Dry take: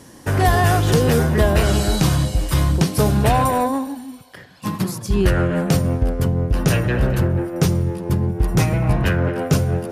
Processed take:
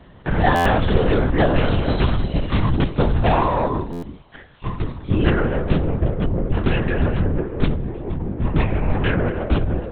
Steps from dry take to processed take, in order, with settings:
0:07.74–0:08.43: downward compressor, threshold −20 dBFS, peak gain reduction 7.5 dB
linear-prediction vocoder at 8 kHz whisper
buffer that repeats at 0:00.55/0:03.92, samples 512, times 8
level −1 dB

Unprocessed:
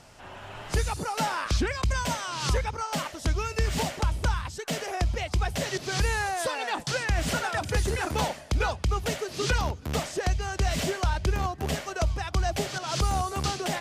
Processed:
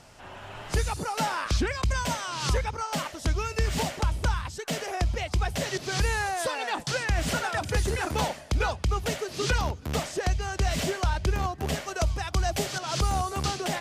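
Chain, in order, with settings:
0:11.88–0:12.80: high-shelf EQ 5,900 Hz +5.5 dB

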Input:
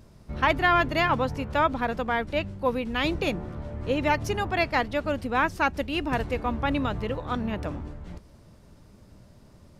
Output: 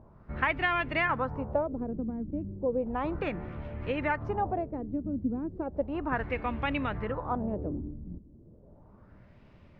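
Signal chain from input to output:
downward compressor 4 to 1, threshold −24 dBFS, peak gain reduction 7 dB
auto-filter low-pass sine 0.34 Hz 260–2,600 Hz
level −3.5 dB

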